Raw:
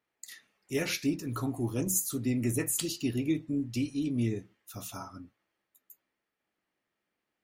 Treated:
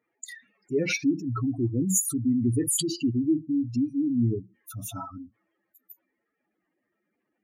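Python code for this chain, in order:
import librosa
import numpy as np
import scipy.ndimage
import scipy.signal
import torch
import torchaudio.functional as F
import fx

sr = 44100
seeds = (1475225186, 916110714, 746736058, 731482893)

y = fx.spec_expand(x, sr, power=2.8)
y = y * 10.0 ** (6.0 / 20.0)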